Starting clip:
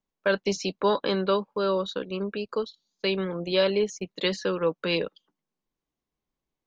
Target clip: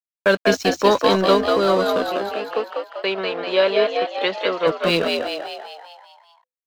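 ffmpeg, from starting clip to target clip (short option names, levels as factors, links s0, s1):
-filter_complex "[0:a]aeval=exprs='sgn(val(0))*max(abs(val(0))-0.0106,0)':c=same,asplit=3[s0][s1][s2];[s0]afade=t=out:st=2.08:d=0.02[s3];[s1]highpass=420,lowpass=2900,afade=t=in:st=2.08:d=0.02,afade=t=out:st=4.66:d=0.02[s4];[s2]afade=t=in:st=4.66:d=0.02[s5];[s3][s4][s5]amix=inputs=3:normalize=0,asplit=8[s6][s7][s8][s9][s10][s11][s12][s13];[s7]adelay=195,afreqshift=72,volume=0.668[s14];[s8]adelay=390,afreqshift=144,volume=0.359[s15];[s9]adelay=585,afreqshift=216,volume=0.195[s16];[s10]adelay=780,afreqshift=288,volume=0.105[s17];[s11]adelay=975,afreqshift=360,volume=0.0569[s18];[s12]adelay=1170,afreqshift=432,volume=0.0305[s19];[s13]adelay=1365,afreqshift=504,volume=0.0166[s20];[s6][s14][s15][s16][s17][s18][s19][s20]amix=inputs=8:normalize=0,volume=2.51"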